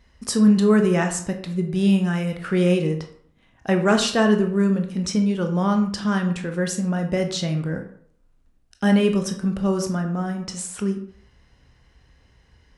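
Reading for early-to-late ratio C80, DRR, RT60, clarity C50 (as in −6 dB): 12.5 dB, 4.5 dB, 0.60 s, 9.0 dB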